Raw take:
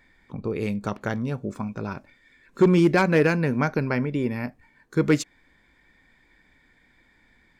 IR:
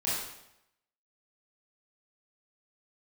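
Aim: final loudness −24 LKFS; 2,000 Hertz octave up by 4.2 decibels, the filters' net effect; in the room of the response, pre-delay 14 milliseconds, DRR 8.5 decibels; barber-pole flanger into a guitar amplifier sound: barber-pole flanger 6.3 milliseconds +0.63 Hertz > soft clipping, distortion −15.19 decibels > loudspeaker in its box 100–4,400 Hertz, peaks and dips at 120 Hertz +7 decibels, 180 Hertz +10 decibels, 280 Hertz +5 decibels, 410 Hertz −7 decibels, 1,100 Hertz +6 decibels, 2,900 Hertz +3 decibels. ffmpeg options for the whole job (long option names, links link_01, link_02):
-filter_complex "[0:a]equalizer=frequency=2000:width_type=o:gain=4.5,asplit=2[link_01][link_02];[1:a]atrim=start_sample=2205,adelay=14[link_03];[link_02][link_03]afir=irnorm=-1:irlink=0,volume=-16dB[link_04];[link_01][link_04]amix=inputs=2:normalize=0,asplit=2[link_05][link_06];[link_06]adelay=6.3,afreqshift=0.63[link_07];[link_05][link_07]amix=inputs=2:normalize=1,asoftclip=threshold=-15.5dB,highpass=100,equalizer=frequency=120:width_type=q:width=4:gain=7,equalizer=frequency=180:width_type=q:width=4:gain=10,equalizer=frequency=280:width_type=q:width=4:gain=5,equalizer=frequency=410:width_type=q:width=4:gain=-7,equalizer=frequency=1100:width_type=q:width=4:gain=6,equalizer=frequency=2900:width_type=q:width=4:gain=3,lowpass=frequency=4400:width=0.5412,lowpass=frequency=4400:width=1.3066,volume=-1dB"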